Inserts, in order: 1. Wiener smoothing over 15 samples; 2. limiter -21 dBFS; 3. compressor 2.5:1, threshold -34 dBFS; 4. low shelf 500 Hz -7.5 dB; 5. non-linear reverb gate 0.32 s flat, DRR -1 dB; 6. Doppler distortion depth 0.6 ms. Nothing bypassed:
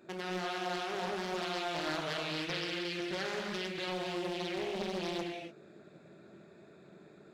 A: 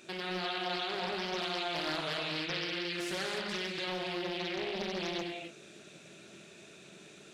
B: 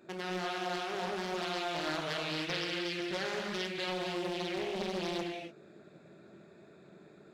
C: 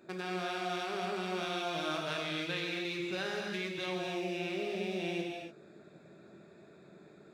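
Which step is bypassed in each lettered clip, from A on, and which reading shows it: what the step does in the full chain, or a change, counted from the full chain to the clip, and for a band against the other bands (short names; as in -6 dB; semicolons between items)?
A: 1, 4 kHz band +4.0 dB; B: 2, momentary loudness spread change -18 LU; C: 6, 8 kHz band -2.0 dB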